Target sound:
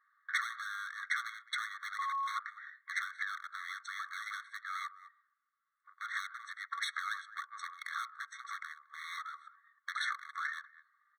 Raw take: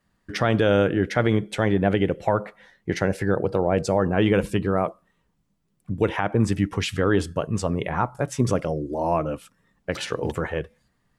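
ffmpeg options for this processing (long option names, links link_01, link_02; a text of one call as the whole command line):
ffmpeg -i in.wav -filter_complex "[0:a]asplit=2[link_01][link_02];[link_02]asoftclip=type=tanh:threshold=-24.5dB,volume=-3.5dB[link_03];[link_01][link_03]amix=inputs=2:normalize=0,adynamicsmooth=sensitivity=2:basefreq=1200,highpass=450,equalizer=frequency=740:width_type=q:width=4:gain=6,equalizer=frequency=2900:width_type=q:width=4:gain=-9,equalizer=frequency=6400:width_type=q:width=4:gain=-4,lowpass=frequency=9900:width=0.5412,lowpass=frequency=9900:width=1.3066,asplit=2[link_04][link_05];[link_05]adelay=210,highpass=300,lowpass=3400,asoftclip=type=hard:threshold=-16dB,volume=-29dB[link_06];[link_04][link_06]amix=inputs=2:normalize=0,asettb=1/sr,asplit=3[link_07][link_08][link_09];[link_07]atrim=end=1.994[link_10];[link_08]atrim=start=1.99:end=2.39,asetpts=PTS-STARTPTS,afade=type=in:duration=0.004:curve=qsin,afade=type=out:start_time=0.396:duration=0.004:curve=qsin,aeval=exprs='val(0)+0.0631*sin(2*PI*1100*n/s)':channel_layout=same[link_11];[link_09]atrim=start=2.386[link_12];[link_10][link_11]acrossfade=duration=0.004:curve1=hsin:curve2=qsin[link_13];[link_13][link_12]acrossfade=duration=0.004:curve1=qsin:curve2=hsin,asoftclip=type=hard:threshold=-23dB,equalizer=frequency=900:width=1.5:gain=3,acompressor=threshold=-36dB:ratio=10,afftfilt=real='re*eq(mod(floor(b*sr/1024/1100),2),1)':imag='im*eq(mod(floor(b*sr/1024/1100),2),1)':win_size=1024:overlap=0.75,volume=8dB" out.wav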